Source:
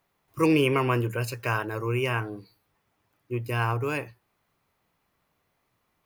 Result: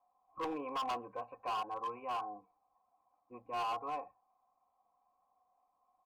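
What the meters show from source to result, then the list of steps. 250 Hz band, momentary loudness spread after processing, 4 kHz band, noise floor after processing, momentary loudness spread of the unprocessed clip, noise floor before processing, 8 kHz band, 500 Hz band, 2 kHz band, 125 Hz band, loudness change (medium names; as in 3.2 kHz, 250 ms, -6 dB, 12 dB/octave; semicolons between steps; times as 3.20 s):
-20.5 dB, 17 LU, -11.5 dB, -79 dBFS, 15 LU, -75 dBFS, under -15 dB, -16.5 dB, -20.5 dB, -35.5 dB, -13.0 dB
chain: peaking EQ 110 Hz -3.5 dB 0.26 oct; comb 3.9 ms, depth 87%; in parallel at -3 dB: compression, threshold -33 dBFS, peak gain reduction 17 dB; on the sum: cascade formant filter a; hard clipper -35.5 dBFS, distortion -8 dB; trim +2 dB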